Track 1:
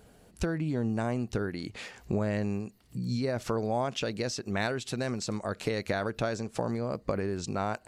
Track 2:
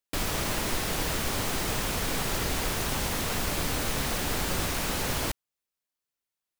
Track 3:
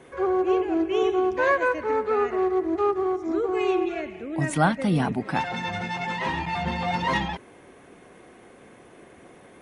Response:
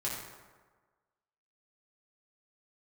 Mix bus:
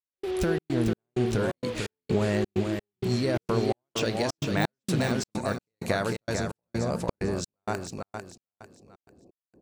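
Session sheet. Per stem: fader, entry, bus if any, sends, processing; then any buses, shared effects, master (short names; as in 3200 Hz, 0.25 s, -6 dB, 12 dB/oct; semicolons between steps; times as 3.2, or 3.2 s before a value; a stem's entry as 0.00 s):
+2.0 dB, 0.00 s, send -19.5 dB, echo send -5.5 dB, de-esser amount 85%
-13.5 dB, 0.00 s, no send, no echo send, LPF 3600 Hz 24 dB/oct; tilt +2.5 dB/oct
-4.0 dB, 0.00 s, no send, no echo send, Wiener smoothing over 25 samples; Gaussian blur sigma 13 samples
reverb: on, RT60 1.4 s, pre-delay 4 ms
echo: feedback echo 0.447 s, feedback 32%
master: high shelf 6500 Hz +11 dB; step gate "..xxx.xx" 129 bpm -60 dB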